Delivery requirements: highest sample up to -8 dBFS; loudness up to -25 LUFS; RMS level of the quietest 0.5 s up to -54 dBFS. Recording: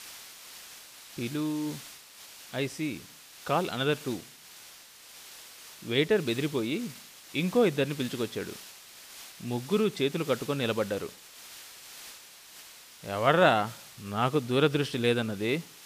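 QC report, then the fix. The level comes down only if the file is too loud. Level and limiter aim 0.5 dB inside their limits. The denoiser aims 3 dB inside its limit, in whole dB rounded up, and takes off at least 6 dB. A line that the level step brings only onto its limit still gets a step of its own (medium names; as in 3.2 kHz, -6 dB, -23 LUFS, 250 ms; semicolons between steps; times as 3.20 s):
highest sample -7.5 dBFS: fail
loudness -29.0 LUFS: pass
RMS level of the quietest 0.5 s -51 dBFS: fail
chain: noise reduction 6 dB, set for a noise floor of -51 dBFS; peak limiter -8.5 dBFS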